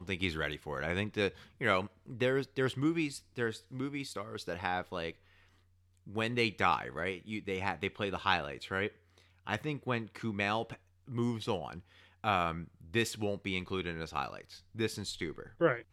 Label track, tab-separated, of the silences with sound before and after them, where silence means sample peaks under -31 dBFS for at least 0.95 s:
5.090000	6.160000	silence